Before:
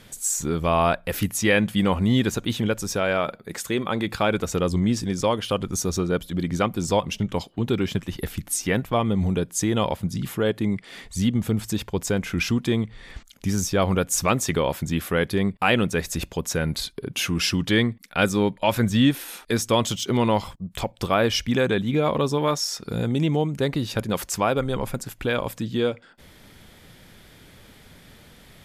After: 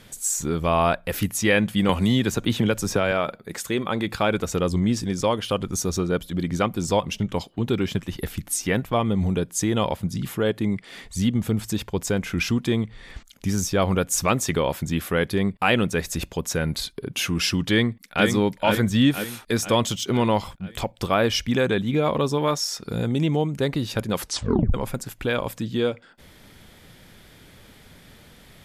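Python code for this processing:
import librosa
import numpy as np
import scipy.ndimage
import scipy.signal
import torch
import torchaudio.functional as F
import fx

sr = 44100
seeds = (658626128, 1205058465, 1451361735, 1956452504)

y = fx.band_squash(x, sr, depth_pct=100, at=(1.89, 3.12))
y = fx.echo_throw(y, sr, start_s=17.69, length_s=0.57, ms=490, feedback_pct=55, wet_db=-5.5)
y = fx.edit(y, sr, fx.tape_stop(start_s=24.2, length_s=0.54), tone=tone)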